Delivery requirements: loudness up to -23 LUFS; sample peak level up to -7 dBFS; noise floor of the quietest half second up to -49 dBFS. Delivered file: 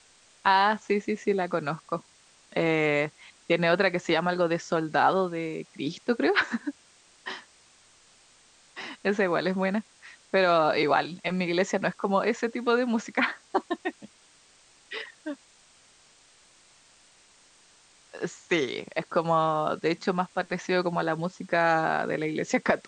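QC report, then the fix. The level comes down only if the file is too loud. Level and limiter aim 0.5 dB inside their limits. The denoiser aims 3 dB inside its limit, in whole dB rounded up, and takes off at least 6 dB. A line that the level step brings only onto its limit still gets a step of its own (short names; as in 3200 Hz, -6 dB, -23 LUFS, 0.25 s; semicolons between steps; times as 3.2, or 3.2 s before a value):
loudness -27.0 LUFS: OK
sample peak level -6.5 dBFS: fail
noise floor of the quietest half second -59 dBFS: OK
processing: limiter -7.5 dBFS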